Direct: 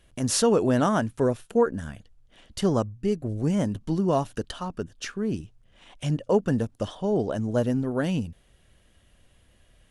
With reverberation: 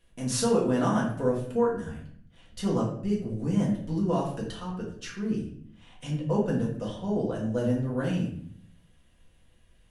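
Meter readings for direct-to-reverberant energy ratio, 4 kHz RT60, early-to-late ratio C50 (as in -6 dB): -4.5 dB, 0.45 s, 5.0 dB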